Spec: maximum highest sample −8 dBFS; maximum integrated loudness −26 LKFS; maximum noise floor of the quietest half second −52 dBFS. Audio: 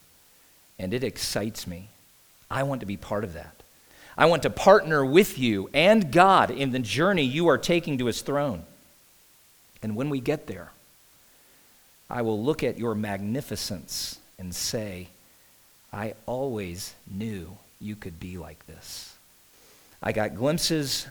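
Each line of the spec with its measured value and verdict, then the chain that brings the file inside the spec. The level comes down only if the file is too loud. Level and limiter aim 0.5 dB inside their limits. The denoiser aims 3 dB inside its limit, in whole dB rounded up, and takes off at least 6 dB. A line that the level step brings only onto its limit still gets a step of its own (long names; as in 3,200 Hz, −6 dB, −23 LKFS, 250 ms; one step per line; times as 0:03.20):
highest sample −2.5 dBFS: out of spec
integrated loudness −25.0 LKFS: out of spec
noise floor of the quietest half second −58 dBFS: in spec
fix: level −1.5 dB
brickwall limiter −8.5 dBFS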